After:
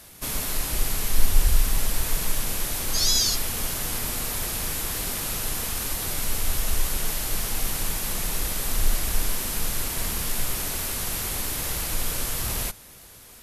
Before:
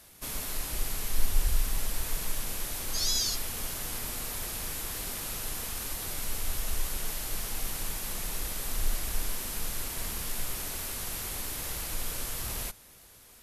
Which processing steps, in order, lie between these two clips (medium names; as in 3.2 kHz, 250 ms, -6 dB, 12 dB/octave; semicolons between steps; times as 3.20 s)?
peaking EQ 140 Hz +2 dB 1.7 oct; trim +7 dB